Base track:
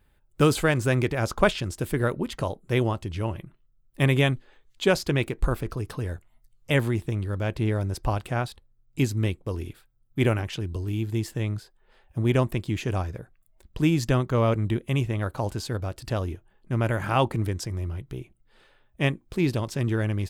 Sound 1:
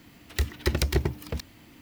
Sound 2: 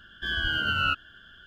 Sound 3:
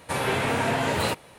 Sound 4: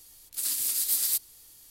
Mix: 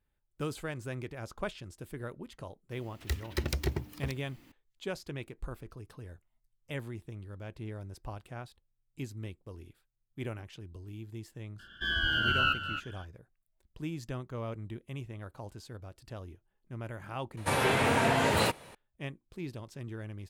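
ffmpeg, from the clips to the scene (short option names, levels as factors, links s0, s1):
-filter_complex "[0:a]volume=0.158[s0];[2:a]aecho=1:1:266:0.316[s1];[1:a]atrim=end=1.81,asetpts=PTS-STARTPTS,volume=0.447,afade=t=in:d=0.004:c=hsin,afade=t=out:st=1.806:d=0.004:c=hsin,adelay=2710[s2];[s1]atrim=end=1.46,asetpts=PTS-STARTPTS,volume=0.794,afade=t=in:d=0.004:c=hsin,afade=t=out:st=1.456:d=0.004:c=hsin,adelay=11590[s3];[3:a]atrim=end=1.38,asetpts=PTS-STARTPTS,volume=0.841,afade=t=in:d=0.004:c=hsin,afade=t=out:st=1.376:d=0.004:c=hsin,adelay=17370[s4];[s0][s2][s3][s4]amix=inputs=4:normalize=0"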